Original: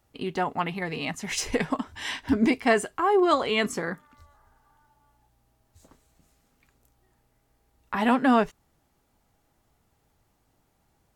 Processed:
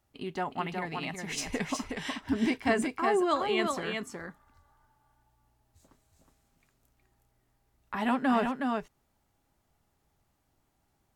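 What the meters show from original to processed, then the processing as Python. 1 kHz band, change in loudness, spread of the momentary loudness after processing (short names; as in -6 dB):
-4.5 dB, -5.0 dB, 10 LU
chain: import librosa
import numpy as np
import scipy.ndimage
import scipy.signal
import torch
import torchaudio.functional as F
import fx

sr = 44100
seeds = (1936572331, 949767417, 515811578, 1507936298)

p1 = fx.notch(x, sr, hz=480.0, q=12.0)
p2 = p1 + fx.echo_single(p1, sr, ms=367, db=-4.5, dry=0)
y = F.gain(torch.from_numpy(p2), -6.0).numpy()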